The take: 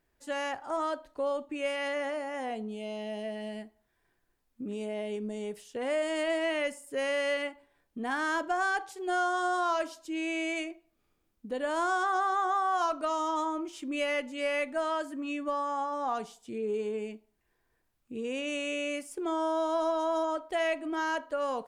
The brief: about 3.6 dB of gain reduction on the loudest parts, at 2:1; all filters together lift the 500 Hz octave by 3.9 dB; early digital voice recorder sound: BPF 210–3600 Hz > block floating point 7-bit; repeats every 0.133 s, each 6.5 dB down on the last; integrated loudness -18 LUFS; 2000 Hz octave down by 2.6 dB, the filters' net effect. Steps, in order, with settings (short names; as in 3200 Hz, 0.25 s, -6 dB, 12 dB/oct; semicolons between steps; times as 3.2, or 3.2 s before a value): bell 500 Hz +5.5 dB; bell 2000 Hz -3.5 dB; compressor 2:1, threshold -30 dBFS; BPF 210–3600 Hz; feedback echo 0.133 s, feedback 47%, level -6.5 dB; block floating point 7-bit; gain +13.5 dB